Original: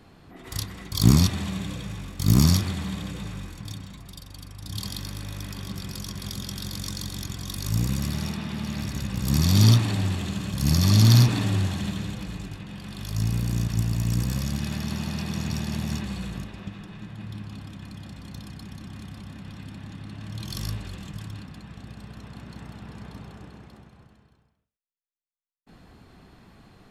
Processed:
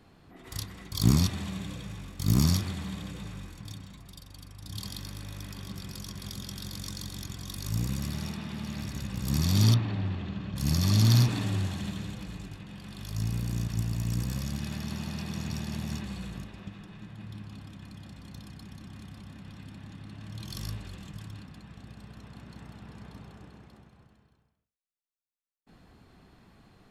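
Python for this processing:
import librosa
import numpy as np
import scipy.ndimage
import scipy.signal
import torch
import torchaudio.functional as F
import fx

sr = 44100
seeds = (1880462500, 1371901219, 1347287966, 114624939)

y = fx.air_absorb(x, sr, metres=260.0, at=(9.74, 10.56))
y = y * librosa.db_to_amplitude(-5.5)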